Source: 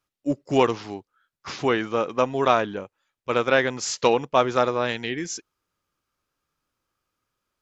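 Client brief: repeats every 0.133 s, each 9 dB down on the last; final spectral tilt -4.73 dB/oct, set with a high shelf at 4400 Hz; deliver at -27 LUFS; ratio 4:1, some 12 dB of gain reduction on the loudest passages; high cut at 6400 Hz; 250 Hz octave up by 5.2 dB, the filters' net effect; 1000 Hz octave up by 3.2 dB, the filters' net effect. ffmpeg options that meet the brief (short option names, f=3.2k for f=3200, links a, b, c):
-af "lowpass=6.4k,equalizer=f=250:t=o:g=6,equalizer=f=1k:t=o:g=4,highshelf=f=4.4k:g=-4,acompressor=threshold=-25dB:ratio=4,aecho=1:1:133|266|399|532:0.355|0.124|0.0435|0.0152,volume=3dB"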